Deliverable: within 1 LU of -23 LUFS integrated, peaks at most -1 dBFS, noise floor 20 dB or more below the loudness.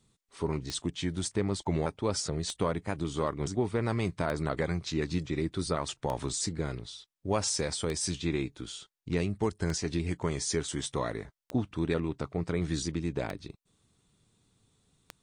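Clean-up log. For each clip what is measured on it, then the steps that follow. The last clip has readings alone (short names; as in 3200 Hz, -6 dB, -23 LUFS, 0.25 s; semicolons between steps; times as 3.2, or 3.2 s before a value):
clicks 9; loudness -32.5 LUFS; peak -16.0 dBFS; loudness target -23.0 LUFS
-> de-click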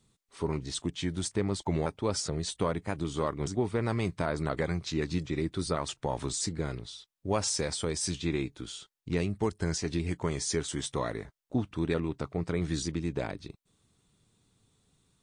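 clicks 0; loudness -32.5 LUFS; peak -16.0 dBFS; loudness target -23.0 LUFS
-> gain +9.5 dB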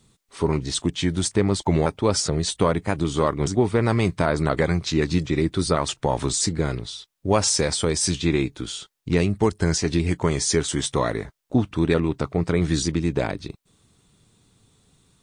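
loudness -23.0 LUFS; peak -6.5 dBFS; noise floor -68 dBFS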